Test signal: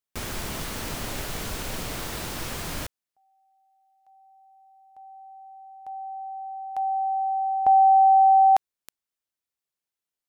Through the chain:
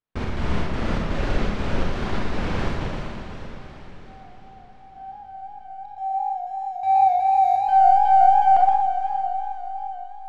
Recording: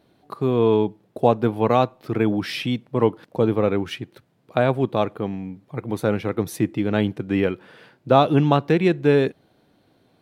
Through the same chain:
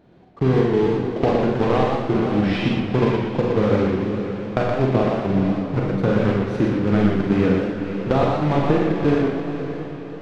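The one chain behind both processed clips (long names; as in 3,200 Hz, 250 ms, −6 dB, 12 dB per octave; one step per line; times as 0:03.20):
one scale factor per block 3 bits
parametric band 670 Hz −2.5 dB 2.3 octaves
downward compressor, threshold −23 dBFS
gate pattern "xx.xx.xx.x" 123 BPM −60 dB
head-to-tape spacing loss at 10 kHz 38 dB
on a send: feedback delay with all-pass diffusion 502 ms, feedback 49%, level −9 dB
on the sum: four-comb reverb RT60 0.61 s, combs from 31 ms, DRR 0 dB
feedback echo with a swinging delay time 119 ms, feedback 37%, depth 120 cents, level −4 dB
level +8 dB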